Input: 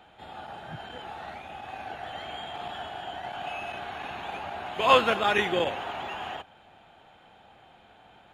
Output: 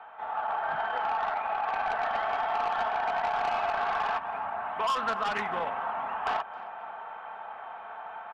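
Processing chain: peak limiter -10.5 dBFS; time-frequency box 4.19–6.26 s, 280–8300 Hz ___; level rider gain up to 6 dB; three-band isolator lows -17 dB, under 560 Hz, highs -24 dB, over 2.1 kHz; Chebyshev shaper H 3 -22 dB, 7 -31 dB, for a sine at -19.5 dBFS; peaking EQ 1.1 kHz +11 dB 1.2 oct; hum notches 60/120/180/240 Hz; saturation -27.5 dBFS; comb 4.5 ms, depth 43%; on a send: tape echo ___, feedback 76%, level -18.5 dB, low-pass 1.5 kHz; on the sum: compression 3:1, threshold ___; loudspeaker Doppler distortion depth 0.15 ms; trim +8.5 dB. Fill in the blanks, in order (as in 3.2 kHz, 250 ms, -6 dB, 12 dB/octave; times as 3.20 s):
-12 dB, 265 ms, -36 dBFS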